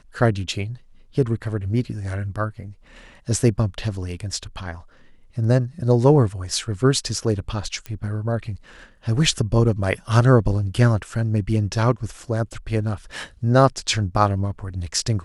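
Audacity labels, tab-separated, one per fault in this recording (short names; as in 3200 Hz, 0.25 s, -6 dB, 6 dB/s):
7.860000	7.860000	pop -17 dBFS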